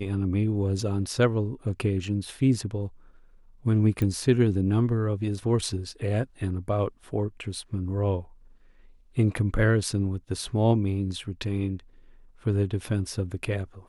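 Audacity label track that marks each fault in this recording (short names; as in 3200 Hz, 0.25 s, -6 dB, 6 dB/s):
4.020000	4.020000	pop -16 dBFS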